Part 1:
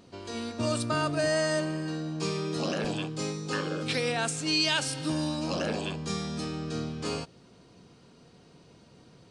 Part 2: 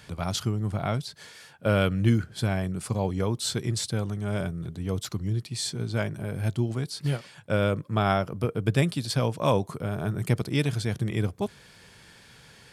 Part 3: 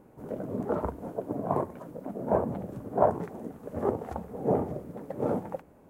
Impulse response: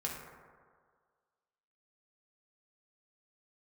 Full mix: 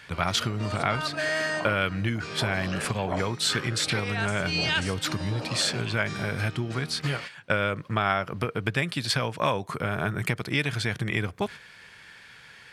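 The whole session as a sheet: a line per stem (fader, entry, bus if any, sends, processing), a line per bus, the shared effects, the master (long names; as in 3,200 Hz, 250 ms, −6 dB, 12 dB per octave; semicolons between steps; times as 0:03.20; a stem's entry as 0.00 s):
−8.0 dB, 0.00 s, bus A, no send, no processing
+2.0 dB, 0.00 s, bus A, no send, no processing
−14.0 dB, 0.10 s, no bus, no send, no processing
bus A: 0.0 dB, noise gate −37 dBFS, range −8 dB; downward compressor, threshold −26 dBFS, peak gain reduction 11.5 dB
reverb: not used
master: parametric band 1,900 Hz +13.5 dB 2.1 octaves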